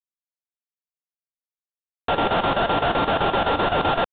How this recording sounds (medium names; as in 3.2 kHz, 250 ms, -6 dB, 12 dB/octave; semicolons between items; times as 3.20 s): a buzz of ramps at a fixed pitch in blocks of 32 samples; chopped level 7.8 Hz, depth 65%, duty 75%; aliases and images of a low sample rate 2.2 kHz, jitter 20%; G.726